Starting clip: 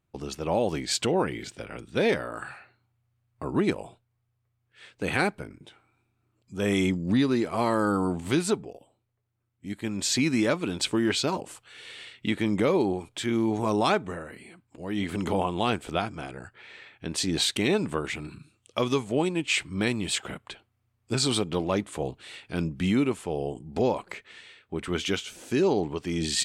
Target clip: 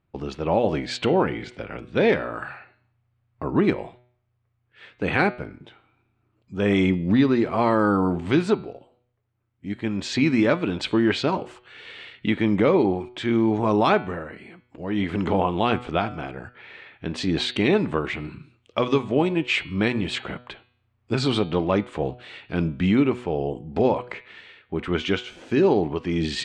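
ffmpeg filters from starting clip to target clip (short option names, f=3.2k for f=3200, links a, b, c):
-af "lowpass=3k,bandreject=f=122.9:t=h:w=4,bandreject=f=245.8:t=h:w=4,bandreject=f=368.7:t=h:w=4,bandreject=f=491.6:t=h:w=4,bandreject=f=614.5:t=h:w=4,bandreject=f=737.4:t=h:w=4,bandreject=f=860.3:t=h:w=4,bandreject=f=983.2:t=h:w=4,bandreject=f=1.1061k:t=h:w=4,bandreject=f=1.229k:t=h:w=4,bandreject=f=1.3519k:t=h:w=4,bandreject=f=1.4748k:t=h:w=4,bandreject=f=1.5977k:t=h:w=4,bandreject=f=1.7206k:t=h:w=4,bandreject=f=1.8435k:t=h:w=4,bandreject=f=1.9664k:t=h:w=4,bandreject=f=2.0893k:t=h:w=4,bandreject=f=2.2122k:t=h:w=4,bandreject=f=2.3351k:t=h:w=4,bandreject=f=2.458k:t=h:w=4,bandreject=f=2.5809k:t=h:w=4,bandreject=f=2.7038k:t=h:w=4,bandreject=f=2.8267k:t=h:w=4,bandreject=f=2.9496k:t=h:w=4,bandreject=f=3.0725k:t=h:w=4,bandreject=f=3.1954k:t=h:w=4,bandreject=f=3.3183k:t=h:w=4,bandreject=f=3.4412k:t=h:w=4,bandreject=f=3.5641k:t=h:w=4,bandreject=f=3.687k:t=h:w=4,bandreject=f=3.8099k:t=h:w=4,bandreject=f=3.9328k:t=h:w=4,bandreject=f=4.0557k:t=h:w=4,bandreject=f=4.1786k:t=h:w=4,bandreject=f=4.3015k:t=h:w=4,bandreject=f=4.4244k:t=h:w=4,bandreject=f=4.5473k:t=h:w=4,volume=5dB"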